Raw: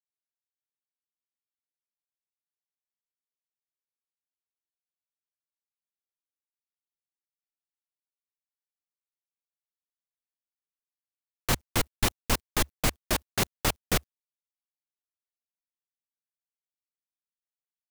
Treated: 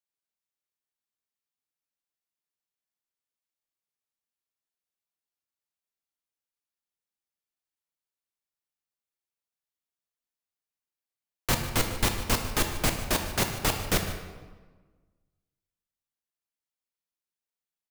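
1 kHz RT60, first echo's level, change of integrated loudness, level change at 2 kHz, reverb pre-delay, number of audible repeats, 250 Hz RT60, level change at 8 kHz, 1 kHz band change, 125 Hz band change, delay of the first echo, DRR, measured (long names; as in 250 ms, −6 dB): 1.3 s, −17.0 dB, +1.0 dB, +1.5 dB, 13 ms, 1, 1.6 s, +1.0 dB, +1.5 dB, +2.0 dB, 150 ms, 4.0 dB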